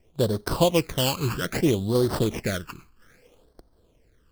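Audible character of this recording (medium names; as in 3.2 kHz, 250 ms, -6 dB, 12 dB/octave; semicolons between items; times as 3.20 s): aliases and images of a low sample rate 3.8 kHz, jitter 20%; phasing stages 12, 0.62 Hz, lowest notch 590–2500 Hz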